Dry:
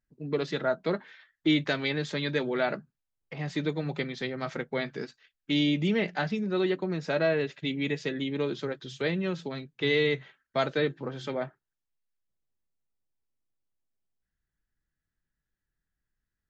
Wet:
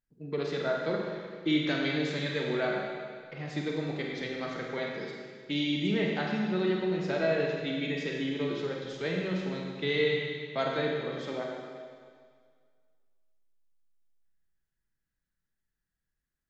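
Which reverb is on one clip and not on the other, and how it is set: Schroeder reverb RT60 1.9 s, combs from 33 ms, DRR -1 dB; gain -5 dB

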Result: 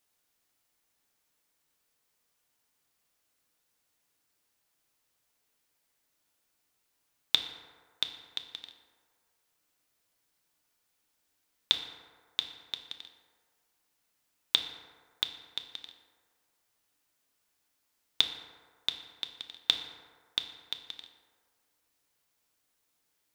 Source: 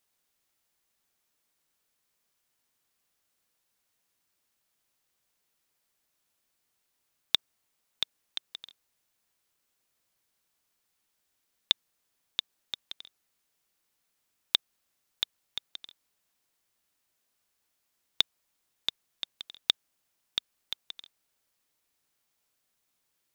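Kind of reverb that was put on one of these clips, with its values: FDN reverb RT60 1.8 s, low-frequency decay 0.7×, high-frequency decay 0.4×, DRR 4.5 dB

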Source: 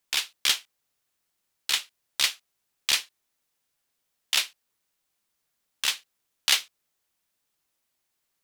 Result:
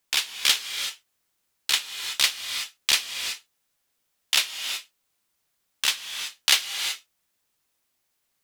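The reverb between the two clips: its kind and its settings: non-linear reverb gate 0.4 s rising, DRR 6.5 dB; gain +2.5 dB

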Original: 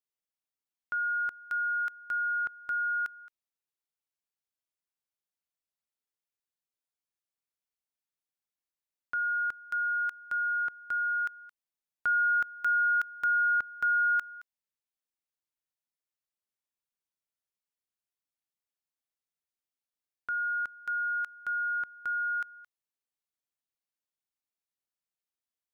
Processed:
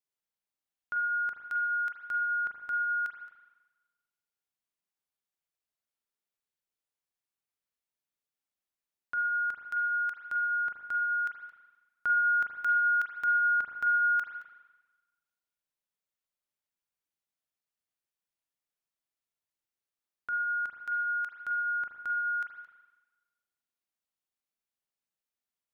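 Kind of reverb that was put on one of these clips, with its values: spring tank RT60 1.2 s, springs 36/41 ms, chirp 40 ms, DRR 2.5 dB; gain -1.5 dB

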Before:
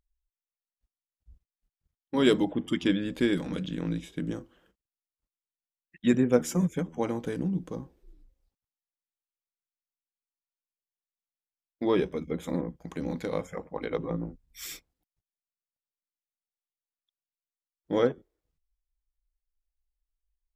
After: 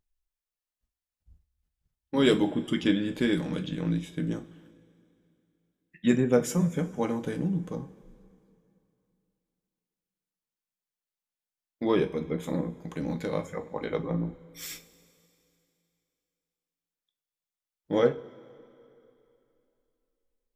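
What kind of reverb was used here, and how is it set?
two-slope reverb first 0.26 s, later 2.9 s, from -21 dB, DRR 5.5 dB

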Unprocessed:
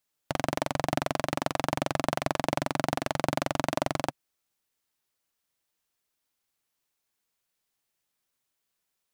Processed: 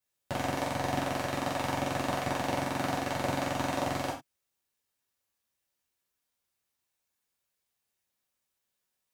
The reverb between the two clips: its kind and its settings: non-linear reverb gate 0.13 s falling, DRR -6.5 dB; gain -9 dB

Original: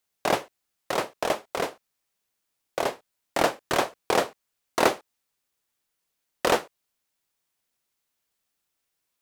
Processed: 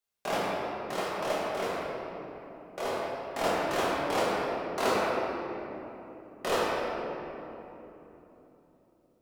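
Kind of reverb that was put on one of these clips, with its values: shoebox room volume 200 m³, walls hard, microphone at 1.3 m; gain -12 dB

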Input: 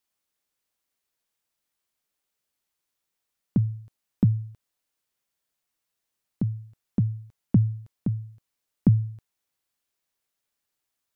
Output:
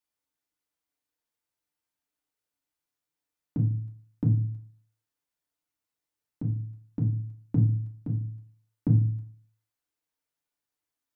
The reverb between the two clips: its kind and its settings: FDN reverb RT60 0.44 s, low-frequency decay 1.25×, high-frequency decay 0.35×, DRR -0.5 dB; gain -8.5 dB

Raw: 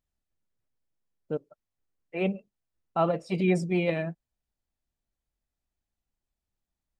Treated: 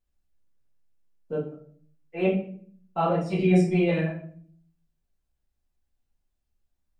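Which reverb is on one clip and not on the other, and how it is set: shoebox room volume 58 m³, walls mixed, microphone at 1.6 m; gain -6 dB

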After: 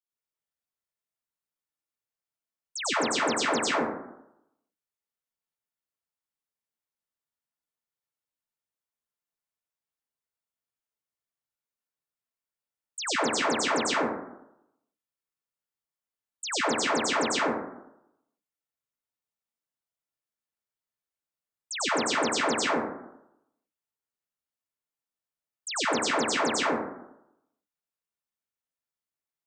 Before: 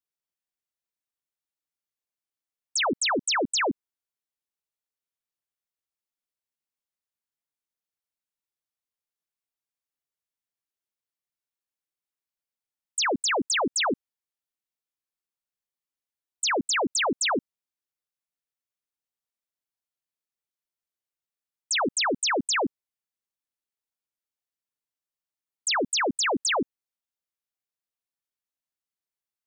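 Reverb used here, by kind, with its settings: plate-style reverb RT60 0.82 s, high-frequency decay 0.35×, pre-delay 85 ms, DRR -9 dB; gain -10 dB

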